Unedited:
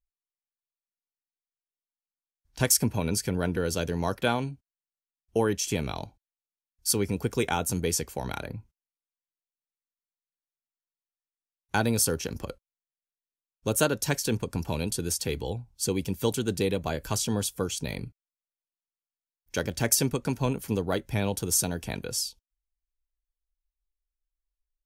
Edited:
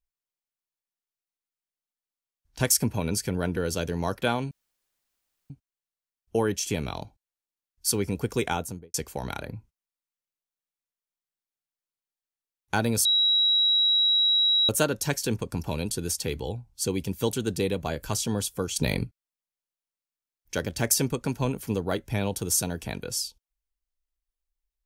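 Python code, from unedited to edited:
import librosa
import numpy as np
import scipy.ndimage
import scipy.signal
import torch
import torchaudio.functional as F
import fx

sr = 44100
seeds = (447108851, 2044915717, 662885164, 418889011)

y = fx.studio_fade_out(x, sr, start_s=7.5, length_s=0.45)
y = fx.edit(y, sr, fx.insert_room_tone(at_s=4.51, length_s=0.99),
    fx.bleep(start_s=12.06, length_s=1.64, hz=3870.0, db=-18.5),
    fx.clip_gain(start_s=17.77, length_s=0.29, db=7.5), tone=tone)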